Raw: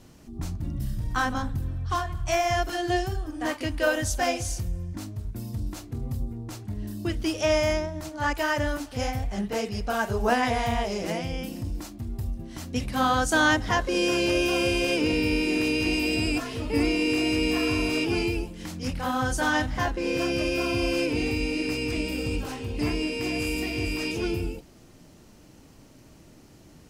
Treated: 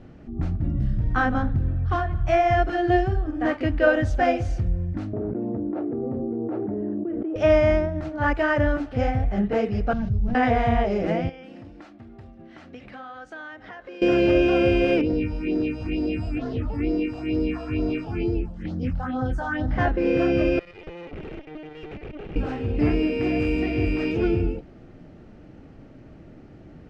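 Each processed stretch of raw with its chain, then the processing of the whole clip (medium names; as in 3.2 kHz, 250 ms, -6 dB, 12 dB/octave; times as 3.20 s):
5.13–7.36 s: ladder band-pass 460 Hz, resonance 35% + level flattener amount 100%
9.93–10.35 s: one-bit delta coder 32 kbps, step -37 dBFS + FFT filter 150 Hz 0 dB, 430 Hz -27 dB, 1.8 kHz -30 dB, 13 kHz -3 dB + level flattener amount 70%
11.29–14.02 s: high-pass 960 Hz 6 dB/octave + treble shelf 8.4 kHz -10.5 dB + compression 4:1, threshold -42 dBFS
15.01–19.71 s: compression 2.5:1, threshold -27 dBFS + phase shifter stages 4, 2.2 Hz, lowest notch 350–2500 Hz
20.59–22.36 s: LPC vocoder at 8 kHz pitch kept + valve stage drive 40 dB, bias 0.6
whole clip: low-pass 1.7 kHz 12 dB/octave; peaking EQ 1 kHz -10.5 dB 0.29 oct; trim +6.5 dB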